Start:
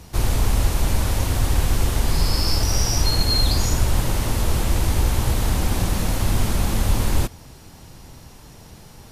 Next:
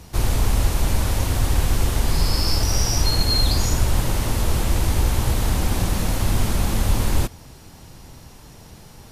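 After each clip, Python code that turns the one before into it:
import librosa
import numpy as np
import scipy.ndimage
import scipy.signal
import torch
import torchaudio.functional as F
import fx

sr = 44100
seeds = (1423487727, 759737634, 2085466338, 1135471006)

y = x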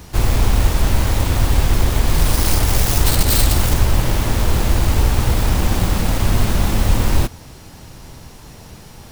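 y = fx.self_delay(x, sr, depth_ms=0.64)
y = fx.dmg_noise_colour(y, sr, seeds[0], colour='pink', level_db=-54.0)
y = y * 10.0 ** (4.5 / 20.0)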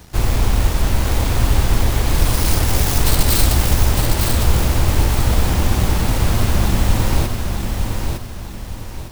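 y = np.sign(x) * np.maximum(np.abs(x) - 10.0 ** (-45.0 / 20.0), 0.0)
y = fx.echo_feedback(y, sr, ms=907, feedback_pct=36, wet_db=-5.0)
y = y * 10.0 ** (-1.0 / 20.0)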